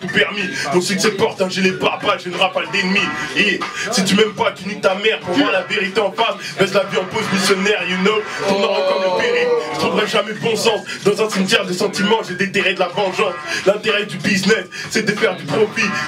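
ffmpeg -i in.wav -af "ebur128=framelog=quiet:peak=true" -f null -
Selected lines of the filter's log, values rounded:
Integrated loudness:
  I:         -16.8 LUFS
  Threshold: -26.8 LUFS
Loudness range:
  LRA:         0.8 LU
  Threshold: -36.8 LUFS
  LRA low:   -17.1 LUFS
  LRA high:  -16.4 LUFS
True peak:
  Peak:       -3.0 dBFS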